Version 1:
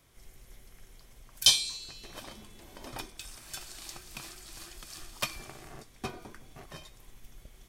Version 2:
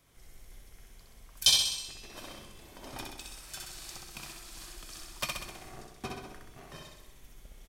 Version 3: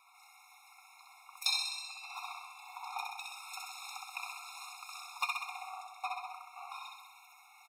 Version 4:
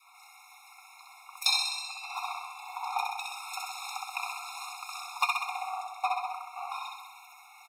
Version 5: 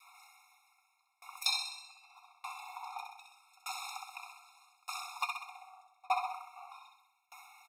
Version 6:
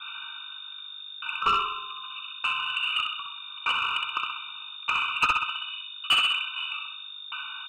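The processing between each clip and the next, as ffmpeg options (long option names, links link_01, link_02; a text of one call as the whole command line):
ffmpeg -i in.wav -af "aecho=1:1:64|128|192|256|320|384|448|512|576:0.708|0.425|0.255|0.153|0.0917|0.055|0.033|0.0198|0.0119,volume=-2.5dB" out.wav
ffmpeg -i in.wav -af "acompressor=threshold=-49dB:ratio=1.5,bass=frequency=250:gain=-8,treble=frequency=4000:gain=-11,afftfilt=real='re*eq(mod(floor(b*sr/1024/710),2),1)':imag='im*eq(mod(floor(b*sr/1024/710),2),1)':win_size=1024:overlap=0.75,volume=11.5dB" out.wav
ffmpeg -i in.wav -af "adynamicequalizer=threshold=0.002:dfrequency=680:dqfactor=0.94:tfrequency=680:tqfactor=0.94:attack=5:release=100:ratio=0.375:range=2.5:mode=boostabove:tftype=bell,volume=5.5dB" out.wav
ffmpeg -i in.wav -af "aeval=exprs='val(0)*pow(10,-30*if(lt(mod(0.82*n/s,1),2*abs(0.82)/1000),1-mod(0.82*n/s,1)/(2*abs(0.82)/1000),(mod(0.82*n/s,1)-2*abs(0.82)/1000)/(1-2*abs(0.82)/1000))/20)':channel_layout=same,volume=1dB" out.wav
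ffmpeg -i in.wav -filter_complex "[0:a]aeval=exprs='val(0)+0.00158*(sin(2*PI*50*n/s)+sin(2*PI*2*50*n/s)/2+sin(2*PI*3*50*n/s)/3+sin(2*PI*4*50*n/s)/4+sin(2*PI*5*50*n/s)/5)':channel_layout=same,lowpass=frequency=3100:width_type=q:width=0.5098,lowpass=frequency=3100:width_type=q:width=0.6013,lowpass=frequency=3100:width_type=q:width=0.9,lowpass=frequency=3100:width_type=q:width=2.563,afreqshift=-3700,asplit=2[link_01][link_02];[link_02]highpass=frequency=720:poles=1,volume=20dB,asoftclip=type=tanh:threshold=-17dB[link_03];[link_01][link_03]amix=inputs=2:normalize=0,lowpass=frequency=1700:poles=1,volume=-6dB,volume=8.5dB" out.wav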